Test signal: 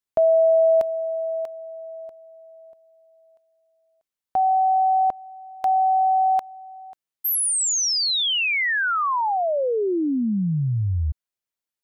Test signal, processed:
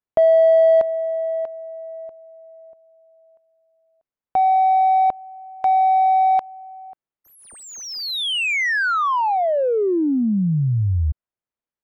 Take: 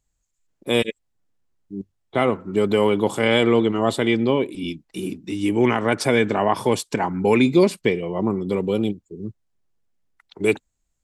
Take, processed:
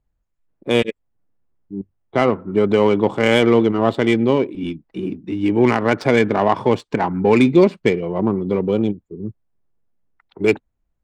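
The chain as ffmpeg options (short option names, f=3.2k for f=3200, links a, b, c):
-af "adynamicsmooth=sensitivity=1:basefreq=1.8k,volume=3.5dB"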